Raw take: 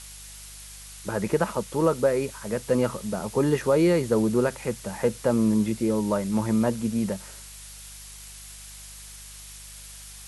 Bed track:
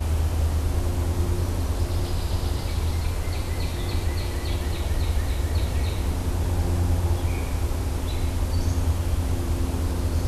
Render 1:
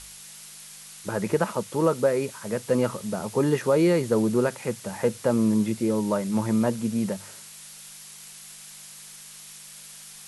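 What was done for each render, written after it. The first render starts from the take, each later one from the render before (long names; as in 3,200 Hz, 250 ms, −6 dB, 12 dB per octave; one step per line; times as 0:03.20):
hum removal 50 Hz, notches 2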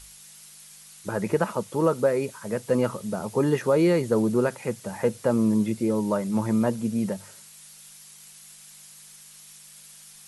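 broadband denoise 6 dB, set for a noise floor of −45 dBFS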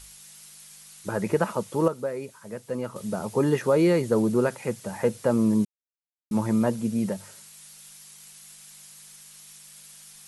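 0:01.88–0:02.96: clip gain −8 dB
0:05.65–0:06.31: silence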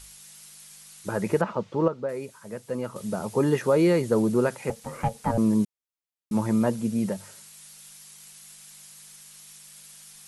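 0:01.41–0:02.09: high-frequency loss of the air 190 metres
0:04.70–0:05.38: ring modulation 340 Hz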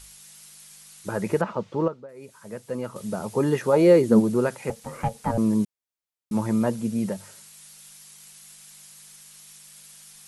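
0:01.81–0:02.40: duck −14 dB, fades 0.26 s
0:03.72–0:04.19: parametric band 900 Hz → 200 Hz +13 dB 0.58 octaves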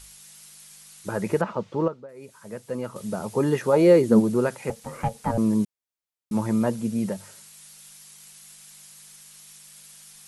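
no processing that can be heard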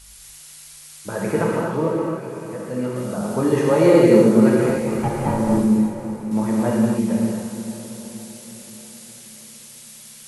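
on a send: feedback delay with all-pass diffusion 534 ms, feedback 49%, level −11.5 dB
on the sum: reverb whose tail is shaped and stops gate 320 ms flat, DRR −4 dB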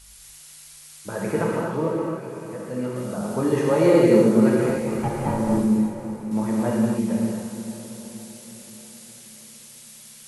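level −3 dB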